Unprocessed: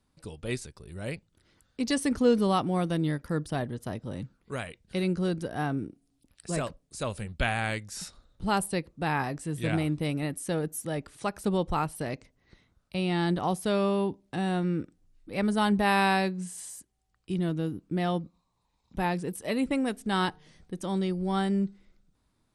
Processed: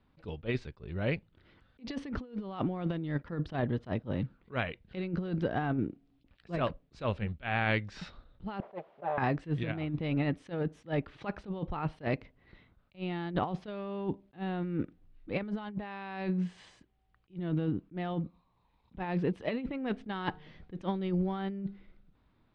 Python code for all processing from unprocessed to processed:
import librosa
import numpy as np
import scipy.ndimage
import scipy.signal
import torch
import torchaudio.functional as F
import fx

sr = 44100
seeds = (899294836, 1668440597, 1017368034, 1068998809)

y = fx.chain(x, sr, fx.lower_of_two(delay_ms=5.1),
    fx.quant_dither(seeds[0], bits=8, dither='triangular'),
    fx.bandpass_q(hz=630.0, q=3.5), at=(8.6, 9.18))
y = scipy.signal.sosfilt(scipy.signal.butter(4, 3400.0, 'lowpass', fs=sr, output='sos'), y)
y = fx.over_compress(y, sr, threshold_db=-31.0, ratio=-0.5)
y = fx.attack_slew(y, sr, db_per_s=320.0)